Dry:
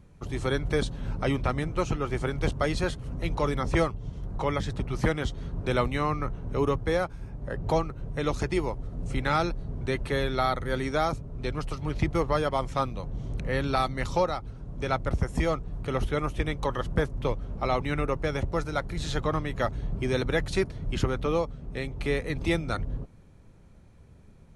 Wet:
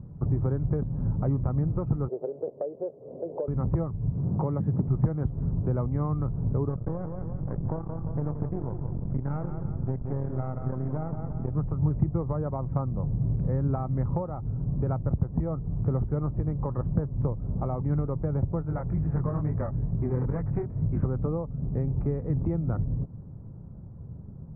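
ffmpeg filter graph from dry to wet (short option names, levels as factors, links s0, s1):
-filter_complex "[0:a]asettb=1/sr,asplit=3[s0][s1][s2];[s0]atrim=end=2.084[s3];[s1]atrim=start=2.08:end=3.48,asetpts=PTS-STARTPTS,afade=t=in:d=0.004:c=qsin,afade=t=out:st=1.396:d=0.004:c=qsin,acontrast=84,asuperpass=centerf=510:order=4:qfactor=2.2[s4];[s2]atrim=start=3.476[s5];[s3][s4]acrossfade=d=0.004:c1=hsin:c2=qsin[s6];[s6][s5]acrossfade=d=0.004:c1=qsin:c2=hsin,asettb=1/sr,asplit=3[s7][s8][s9];[s7]atrim=end=4.174[s10];[s8]atrim=start=4.17:end=4.88,asetpts=PTS-STARTPTS,afade=t=in:d=0.004:c=qsin,afade=t=out:st=0.706:d=0.004:c=qsin,highpass=170,lowshelf=f=360:g=6.5[s11];[s9]atrim=start=4.876[s12];[s10][s11]acrossfade=d=0.004:c1=hsin:c2=qsin[s13];[s13][s12]acrossfade=d=0.004:c1=qsin:c2=hsin,asettb=1/sr,asplit=3[s14][s15][s16];[s14]atrim=end=6.694[s17];[s15]atrim=start=6.69:end=11.56,asetpts=PTS-STARTPTS,afade=t=in:d=0.004:c=qsin,afade=t=out:st=4.866:d=0.004:c=qsin,bandreject=f=114.8:t=h:w=4,bandreject=f=229.6:t=h:w=4,bandreject=f=344.4:t=h:w=4,bandreject=f=459.2:t=h:w=4,bandreject=f=574:t=h:w=4,bandreject=f=688.8:t=h:w=4,bandreject=f=803.6:t=h:w=4,bandreject=f=918.4:t=h:w=4,bandreject=f=1033.2:t=h:w=4,bandreject=f=1148:t=h:w=4,bandreject=f=1262.8:t=h:w=4,aeval=exprs='max(val(0),0)':c=same,aecho=1:1:174|348|522|696:0.316|0.126|0.0506|0.0202,atrim=end_sample=214767[s18];[s16]atrim=start=11.556[s19];[s17][s18]acrossfade=d=0.004:c1=hsin:c2=qsin[s20];[s20][s19]acrossfade=d=0.004:c1=qsin:c2=hsin,asettb=1/sr,asplit=3[s21][s22][s23];[s21]atrim=end=18.624[s24];[s22]atrim=start=18.62:end=21.05,asetpts=PTS-STARTPTS,afade=t=in:d=0.004:c=qsin,afade=t=out:st=2.426:d=0.004:c=qsin,aeval=exprs='clip(val(0),-1,0.0531)':c=same,highshelf=f=3000:t=q:w=3:g=-10.5,flanger=delay=18.5:depth=6.1:speed=2.2[s25];[s23]atrim=start=21.046[s26];[s24][s25]acrossfade=d=0.004:c1=hsin:c2=qsin[s27];[s27][s26]acrossfade=d=0.004:c1=qsin:c2=hsin,lowpass=f=1100:w=0.5412,lowpass=f=1100:w=1.3066,acompressor=threshold=0.02:ratio=6,equalizer=f=130:t=o:w=1.8:g=14,volume=1.26"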